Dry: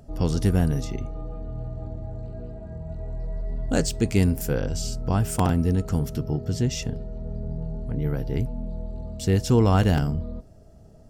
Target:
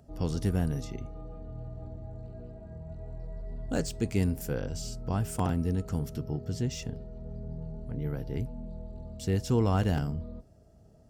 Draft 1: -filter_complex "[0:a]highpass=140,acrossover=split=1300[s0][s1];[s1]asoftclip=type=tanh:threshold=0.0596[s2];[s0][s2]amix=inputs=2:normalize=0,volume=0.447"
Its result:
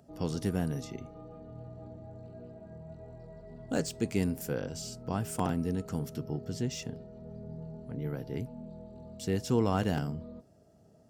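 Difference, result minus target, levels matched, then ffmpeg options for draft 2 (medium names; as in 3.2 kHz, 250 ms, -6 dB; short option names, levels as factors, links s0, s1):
125 Hz band -3.5 dB
-filter_complex "[0:a]highpass=39,acrossover=split=1300[s0][s1];[s1]asoftclip=type=tanh:threshold=0.0596[s2];[s0][s2]amix=inputs=2:normalize=0,volume=0.447"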